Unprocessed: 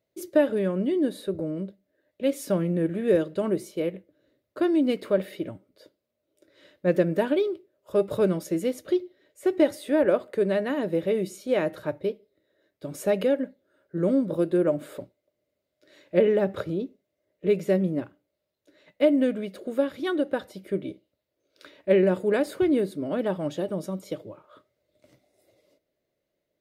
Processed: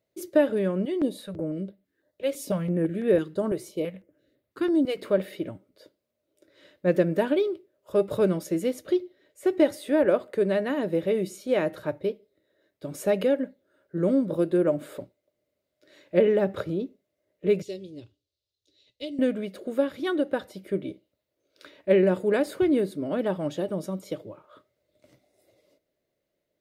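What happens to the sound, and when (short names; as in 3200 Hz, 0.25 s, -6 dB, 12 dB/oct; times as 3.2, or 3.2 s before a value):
0.85–4.98 stepped notch 6 Hz 230–6400 Hz
17.62–19.19 EQ curve 110 Hz 0 dB, 170 Hz -21 dB, 420 Hz -9 dB, 660 Hz -21 dB, 1000 Hz -23 dB, 1600 Hz -25 dB, 2700 Hz -5 dB, 3900 Hz +5 dB, 5700 Hz +3 dB, 12000 Hz -12 dB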